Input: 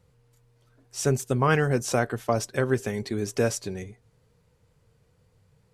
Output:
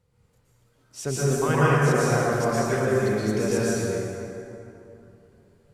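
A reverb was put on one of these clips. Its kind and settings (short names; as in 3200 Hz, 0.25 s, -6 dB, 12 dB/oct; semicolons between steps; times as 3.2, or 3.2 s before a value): plate-style reverb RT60 2.9 s, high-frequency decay 0.55×, pre-delay 0.105 s, DRR -8.5 dB; gain -6 dB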